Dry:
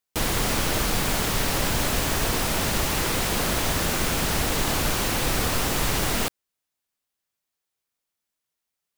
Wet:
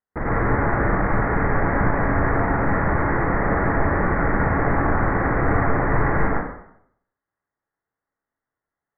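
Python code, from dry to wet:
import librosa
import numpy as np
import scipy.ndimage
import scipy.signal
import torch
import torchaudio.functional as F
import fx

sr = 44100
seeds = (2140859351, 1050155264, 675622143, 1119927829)

y = fx.rattle_buzz(x, sr, strikes_db=-28.0, level_db=-15.0)
y = scipy.signal.sosfilt(scipy.signal.butter(16, 2000.0, 'lowpass', fs=sr, output='sos'), y)
y = fx.rev_plate(y, sr, seeds[0], rt60_s=0.7, hf_ratio=0.8, predelay_ms=85, drr_db=-5.0)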